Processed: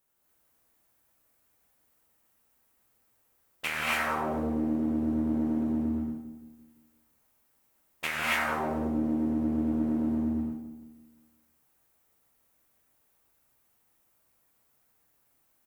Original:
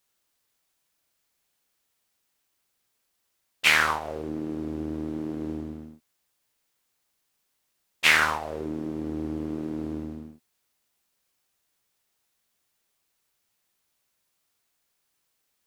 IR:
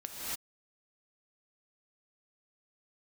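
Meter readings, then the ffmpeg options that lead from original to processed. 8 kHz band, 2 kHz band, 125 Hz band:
-8.5 dB, -7.5 dB, +0.5 dB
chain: -filter_complex "[0:a]equalizer=f=4.4k:t=o:w=2.2:g=-12,acompressor=threshold=-33dB:ratio=6,asplit=2[a][b];[b]adelay=171,lowpass=f=940:p=1,volume=-8dB,asplit=2[c][d];[d]adelay=171,lowpass=f=940:p=1,volume=0.48,asplit=2[e][f];[f]adelay=171,lowpass=f=940:p=1,volume=0.48,asplit=2[g][h];[h]adelay=171,lowpass=f=940:p=1,volume=0.48,asplit=2[i][j];[j]adelay=171,lowpass=f=940:p=1,volume=0.48,asplit=2[k][l];[l]adelay=171,lowpass=f=940:p=1,volume=0.48[m];[a][c][e][g][i][k][m]amix=inputs=7:normalize=0[n];[1:a]atrim=start_sample=2205[o];[n][o]afir=irnorm=-1:irlink=0,volume=6dB"

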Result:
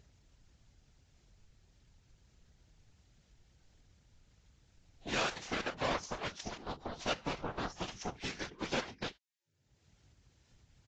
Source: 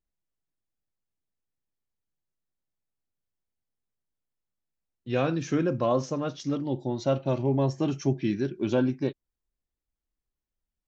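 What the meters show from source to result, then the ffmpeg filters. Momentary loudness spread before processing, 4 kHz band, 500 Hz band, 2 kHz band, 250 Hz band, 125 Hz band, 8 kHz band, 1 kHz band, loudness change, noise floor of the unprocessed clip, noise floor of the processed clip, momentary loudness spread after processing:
6 LU, +3.0 dB, -13.5 dB, +1.5 dB, -16.5 dB, -18.0 dB, n/a, -4.5 dB, -11.0 dB, under -85 dBFS, -73 dBFS, 9 LU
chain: -filter_complex "[0:a]bandreject=f=1.1k:w=9.3,acrossover=split=1000[a][b];[a]acompressor=threshold=-38dB:ratio=8[c];[c][b]amix=inputs=2:normalize=0,aeval=exprs='0.0668*(cos(1*acos(clip(val(0)/0.0668,-1,1)))-cos(1*PI/2))+0.00237*(cos(3*acos(clip(val(0)/0.0668,-1,1)))-cos(3*PI/2))+0.0133*(cos(7*acos(clip(val(0)/0.0668,-1,1)))-cos(7*PI/2))':c=same,afftfilt=real='hypot(re,im)*cos(2*PI*random(0))':imag='hypot(re,im)*sin(2*PI*random(1))':win_size=512:overlap=0.75,acompressor=mode=upward:threshold=-52dB:ratio=2.5,aresample=16000,aresample=44100,volume=9dB" -ar 32000 -c:a libvorbis -b:a 32k

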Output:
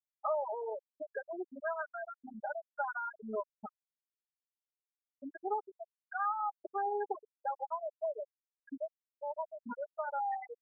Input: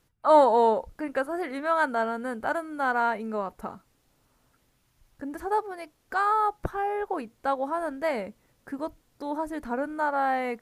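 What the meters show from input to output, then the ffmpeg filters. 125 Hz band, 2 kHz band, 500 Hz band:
under -15 dB, -12.5 dB, -12.0 dB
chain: -filter_complex "[0:a]highpass=f=460:p=1,acompressor=threshold=-36dB:ratio=4,aecho=1:1:4.9:0.52,asplit=2[a][b];[b]adelay=125,lowpass=f=4.5k:p=1,volume=-15dB,asplit=2[c][d];[d]adelay=125,lowpass=f=4.5k:p=1,volume=0.35,asplit=2[e][f];[f]adelay=125,lowpass=f=4.5k:p=1,volume=0.35[g];[a][c][e][g]amix=inputs=4:normalize=0,afftfilt=real='re*gte(hypot(re,im),0.0794)':imag='im*gte(hypot(re,im),0.0794)':win_size=1024:overlap=0.75,volume=1dB"

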